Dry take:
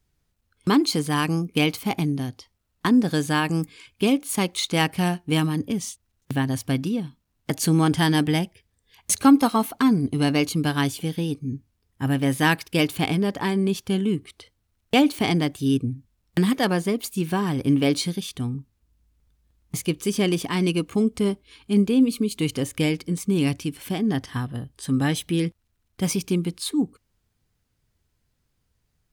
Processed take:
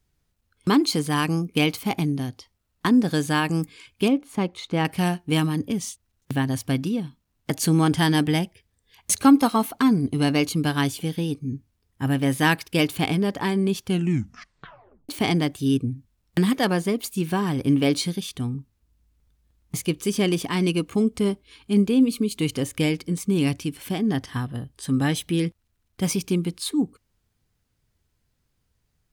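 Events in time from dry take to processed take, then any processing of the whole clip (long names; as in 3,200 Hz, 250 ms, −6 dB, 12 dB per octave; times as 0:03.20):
0:04.08–0:04.85: low-pass filter 1,100 Hz 6 dB per octave
0:13.88: tape stop 1.21 s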